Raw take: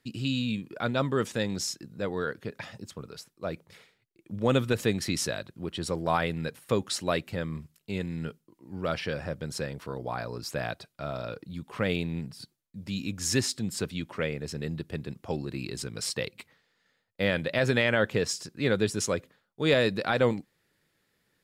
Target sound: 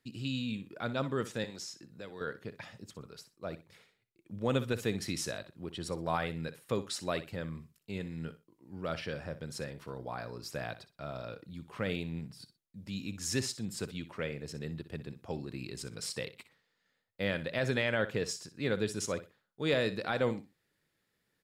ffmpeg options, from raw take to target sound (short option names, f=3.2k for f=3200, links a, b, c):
-filter_complex "[0:a]asettb=1/sr,asplit=3[a][b][c];[a]atrim=end=1.444[d];[b]atrim=start=1.44:end=2.21,asetpts=PTS-STARTPTS,afade=t=in:d=0.004:c=qsin,afade=t=out:st=0.766:d=0.004:c=qsin,acrossover=split=370|2200|7700[e][f][g][h];[e]acompressor=threshold=-45dB:ratio=4[i];[f]acompressor=threshold=-41dB:ratio=4[j];[g]acompressor=threshold=-36dB:ratio=4[k];[h]acompressor=threshold=-52dB:ratio=4[l];[i][j][k][l]amix=inputs=4:normalize=0[m];[c]atrim=start=2.206[n];[d][m]acrossfade=d=0.004:c1=hsin:c2=qsin[o];[o][n]acrossfade=d=0.004:c1=qsin:c2=hsin,aecho=1:1:61|122:0.2|0.0439,volume=-6.5dB"